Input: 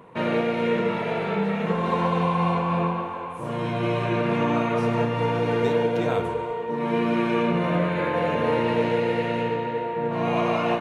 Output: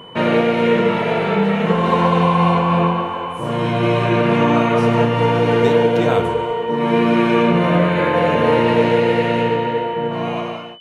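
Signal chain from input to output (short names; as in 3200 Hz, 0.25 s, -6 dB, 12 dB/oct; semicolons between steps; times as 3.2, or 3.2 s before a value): ending faded out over 1.09 s; whine 3000 Hz -48 dBFS; gain +8 dB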